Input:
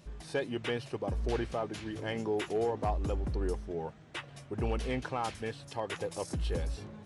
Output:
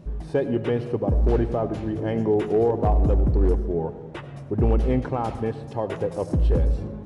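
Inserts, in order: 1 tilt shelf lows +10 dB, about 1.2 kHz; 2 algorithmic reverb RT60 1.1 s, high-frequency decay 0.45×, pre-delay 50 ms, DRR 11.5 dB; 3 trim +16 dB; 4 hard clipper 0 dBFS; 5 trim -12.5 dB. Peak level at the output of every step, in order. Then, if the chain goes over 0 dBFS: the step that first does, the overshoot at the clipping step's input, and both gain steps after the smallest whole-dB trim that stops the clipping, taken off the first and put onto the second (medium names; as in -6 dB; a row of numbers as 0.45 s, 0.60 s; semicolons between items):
-14.0 dBFS, -13.0 dBFS, +3.0 dBFS, 0.0 dBFS, -12.5 dBFS; step 3, 3.0 dB; step 3 +13 dB, step 5 -9.5 dB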